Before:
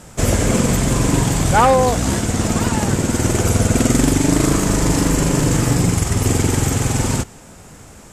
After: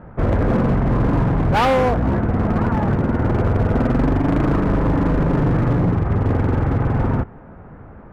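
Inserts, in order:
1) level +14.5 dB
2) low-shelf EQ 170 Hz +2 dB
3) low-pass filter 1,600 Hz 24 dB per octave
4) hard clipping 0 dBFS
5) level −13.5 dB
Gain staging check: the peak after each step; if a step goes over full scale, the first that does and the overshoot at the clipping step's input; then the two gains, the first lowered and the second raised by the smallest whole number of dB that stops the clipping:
+9.0, +10.0, +9.5, 0.0, −13.5 dBFS
step 1, 9.5 dB
step 1 +4.5 dB, step 5 −3.5 dB

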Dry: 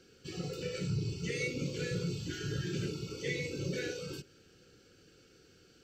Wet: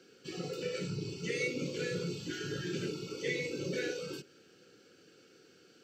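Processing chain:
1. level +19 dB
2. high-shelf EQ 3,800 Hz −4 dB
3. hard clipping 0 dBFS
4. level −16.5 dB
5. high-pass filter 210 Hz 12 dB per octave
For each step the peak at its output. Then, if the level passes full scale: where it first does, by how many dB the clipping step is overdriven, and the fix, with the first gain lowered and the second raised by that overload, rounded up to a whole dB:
−2.5, −3.5, −3.5, −20.0, −22.5 dBFS
no step passes full scale

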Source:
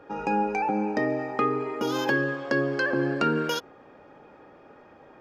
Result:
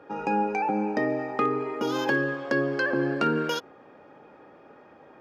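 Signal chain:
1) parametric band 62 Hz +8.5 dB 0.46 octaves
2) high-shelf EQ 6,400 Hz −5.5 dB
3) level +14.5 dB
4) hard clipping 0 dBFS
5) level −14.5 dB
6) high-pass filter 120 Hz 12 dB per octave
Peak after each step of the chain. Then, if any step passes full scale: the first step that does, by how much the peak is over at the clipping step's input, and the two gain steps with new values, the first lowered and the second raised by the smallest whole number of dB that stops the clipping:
−11.5, −11.5, +3.0, 0.0, −14.5, −12.5 dBFS
step 3, 3.0 dB
step 3 +11.5 dB, step 5 −11.5 dB

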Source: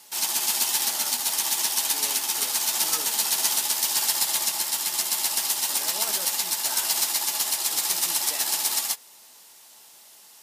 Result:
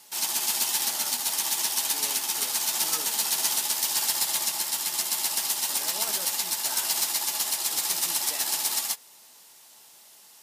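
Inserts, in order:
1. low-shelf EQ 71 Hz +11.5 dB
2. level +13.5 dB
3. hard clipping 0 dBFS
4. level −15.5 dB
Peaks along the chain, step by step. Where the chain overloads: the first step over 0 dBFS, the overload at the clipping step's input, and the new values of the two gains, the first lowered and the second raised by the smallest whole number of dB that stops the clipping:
−8.0, +5.5, 0.0, −15.5 dBFS
step 2, 5.5 dB
step 2 +7.5 dB, step 4 −9.5 dB

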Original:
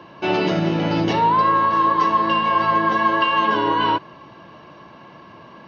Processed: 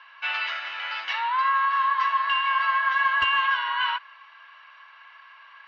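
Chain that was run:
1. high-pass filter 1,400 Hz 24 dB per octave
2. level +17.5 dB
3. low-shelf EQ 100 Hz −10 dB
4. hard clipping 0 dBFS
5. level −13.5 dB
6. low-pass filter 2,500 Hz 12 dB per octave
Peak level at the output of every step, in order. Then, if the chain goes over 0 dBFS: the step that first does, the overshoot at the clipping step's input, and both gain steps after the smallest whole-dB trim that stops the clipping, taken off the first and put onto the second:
−12.0, +5.5, +5.5, 0.0, −13.5, −13.5 dBFS
step 2, 5.5 dB
step 2 +11.5 dB, step 5 −7.5 dB

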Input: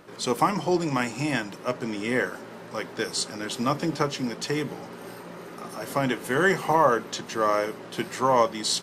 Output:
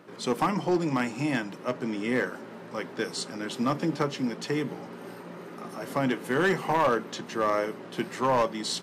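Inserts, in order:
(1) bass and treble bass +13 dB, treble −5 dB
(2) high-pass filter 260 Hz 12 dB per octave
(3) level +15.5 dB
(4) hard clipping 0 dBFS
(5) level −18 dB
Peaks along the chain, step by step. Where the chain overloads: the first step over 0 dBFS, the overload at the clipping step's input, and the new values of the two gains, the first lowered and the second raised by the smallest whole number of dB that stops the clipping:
−6.0, −6.5, +9.0, 0.0, −18.0 dBFS
step 3, 9.0 dB
step 3 +6.5 dB, step 5 −9 dB

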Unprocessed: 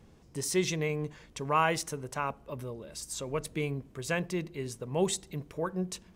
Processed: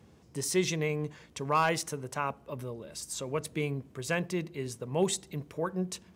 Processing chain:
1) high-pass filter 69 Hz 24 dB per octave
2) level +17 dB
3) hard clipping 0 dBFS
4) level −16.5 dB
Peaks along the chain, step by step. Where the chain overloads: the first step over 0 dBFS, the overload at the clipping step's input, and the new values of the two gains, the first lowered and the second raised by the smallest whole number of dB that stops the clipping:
−12.5, +4.5, 0.0, −16.5 dBFS
step 2, 4.5 dB
step 2 +12 dB, step 4 −11.5 dB

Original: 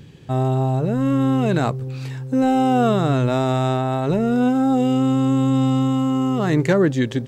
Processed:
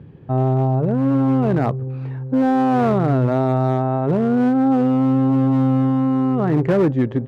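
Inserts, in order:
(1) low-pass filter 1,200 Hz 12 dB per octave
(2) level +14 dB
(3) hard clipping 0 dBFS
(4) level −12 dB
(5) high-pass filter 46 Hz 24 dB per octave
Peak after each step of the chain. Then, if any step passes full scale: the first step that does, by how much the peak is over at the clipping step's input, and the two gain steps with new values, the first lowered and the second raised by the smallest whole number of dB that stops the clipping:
−7.0, +7.0, 0.0, −12.0, −7.5 dBFS
step 2, 7.0 dB
step 2 +7 dB, step 4 −5 dB

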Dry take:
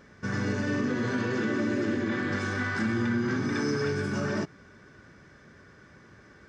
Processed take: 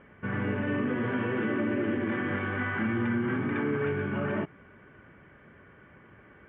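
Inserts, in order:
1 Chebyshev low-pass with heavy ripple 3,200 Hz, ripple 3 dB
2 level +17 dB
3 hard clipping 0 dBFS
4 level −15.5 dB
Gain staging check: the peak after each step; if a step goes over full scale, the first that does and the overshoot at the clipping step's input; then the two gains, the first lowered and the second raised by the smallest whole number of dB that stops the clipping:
−20.0, −3.0, −3.0, −18.5 dBFS
no step passes full scale

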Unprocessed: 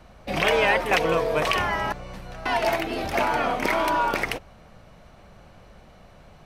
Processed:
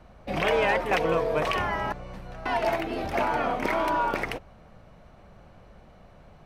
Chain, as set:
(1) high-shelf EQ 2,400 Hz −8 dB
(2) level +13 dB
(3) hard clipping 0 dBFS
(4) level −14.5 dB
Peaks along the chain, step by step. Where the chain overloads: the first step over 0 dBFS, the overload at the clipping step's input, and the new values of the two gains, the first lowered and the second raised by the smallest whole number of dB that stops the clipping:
−9.5, +3.5, 0.0, −14.5 dBFS
step 2, 3.5 dB
step 2 +9 dB, step 4 −10.5 dB

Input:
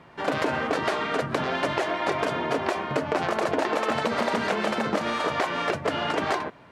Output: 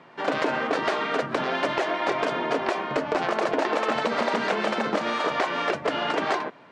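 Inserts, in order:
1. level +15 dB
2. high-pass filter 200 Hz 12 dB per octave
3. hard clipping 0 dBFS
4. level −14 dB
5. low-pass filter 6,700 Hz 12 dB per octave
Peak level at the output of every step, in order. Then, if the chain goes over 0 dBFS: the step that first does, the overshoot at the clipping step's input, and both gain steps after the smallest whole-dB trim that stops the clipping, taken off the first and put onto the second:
+6.0, +5.5, 0.0, −14.0, −13.5 dBFS
step 1, 5.5 dB
step 1 +9 dB, step 4 −8 dB

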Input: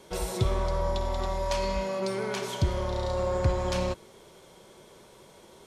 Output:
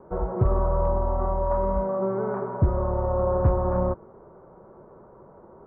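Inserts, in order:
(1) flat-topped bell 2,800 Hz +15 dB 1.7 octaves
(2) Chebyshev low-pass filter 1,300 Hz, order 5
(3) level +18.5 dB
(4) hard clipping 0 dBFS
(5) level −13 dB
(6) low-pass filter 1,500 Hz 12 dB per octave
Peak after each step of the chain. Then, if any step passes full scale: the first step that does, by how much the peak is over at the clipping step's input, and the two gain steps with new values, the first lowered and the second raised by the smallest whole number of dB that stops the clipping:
−8.0, −15.0, +3.5, 0.0, −13.0, −12.5 dBFS
step 3, 3.5 dB
step 3 +14.5 dB, step 5 −9 dB

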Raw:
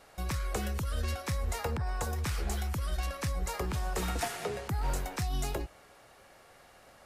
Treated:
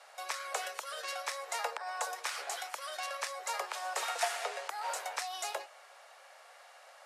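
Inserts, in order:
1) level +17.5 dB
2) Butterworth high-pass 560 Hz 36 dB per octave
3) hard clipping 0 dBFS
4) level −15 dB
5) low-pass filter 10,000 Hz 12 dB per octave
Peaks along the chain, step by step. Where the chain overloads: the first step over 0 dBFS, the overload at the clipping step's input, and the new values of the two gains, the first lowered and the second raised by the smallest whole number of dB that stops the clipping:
−4.5, −3.5, −3.5, −18.5, −18.5 dBFS
no step passes full scale

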